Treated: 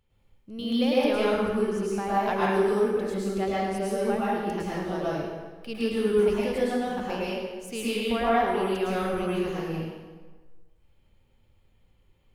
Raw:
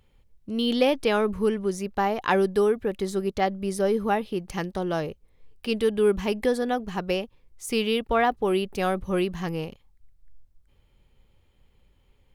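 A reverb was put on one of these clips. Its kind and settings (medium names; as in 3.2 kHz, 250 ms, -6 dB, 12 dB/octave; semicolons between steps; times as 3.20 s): plate-style reverb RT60 1.4 s, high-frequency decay 0.75×, pre-delay 95 ms, DRR -8 dB; trim -10 dB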